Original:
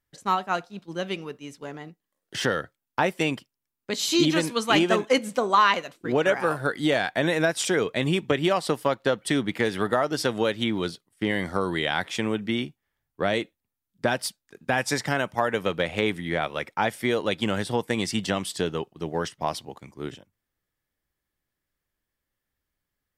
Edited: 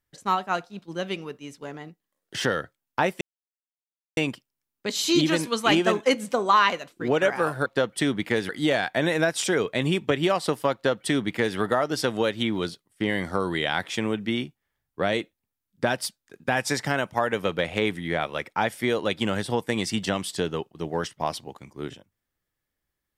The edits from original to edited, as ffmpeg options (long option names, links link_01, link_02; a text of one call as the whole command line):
ffmpeg -i in.wav -filter_complex "[0:a]asplit=4[link_01][link_02][link_03][link_04];[link_01]atrim=end=3.21,asetpts=PTS-STARTPTS,afade=type=out:start_time=3.206:duration=0.004:curve=hsin,apad=pad_dur=0.96[link_05];[link_02]atrim=start=3.21:end=6.702,asetpts=PTS-STARTPTS,afade=type=in:duration=0.004:curve=hsin[link_06];[link_03]atrim=start=8.948:end=9.782[link_07];[link_04]atrim=start=6.698[link_08];[link_05][link_06]concat=n=2:v=0:a=1[link_09];[link_09][link_07]acrossfade=duration=0.004:curve1=hsin:curve2=hsin[link_10];[link_10][link_08]acrossfade=duration=0.004:curve1=hsin:curve2=hsin" out.wav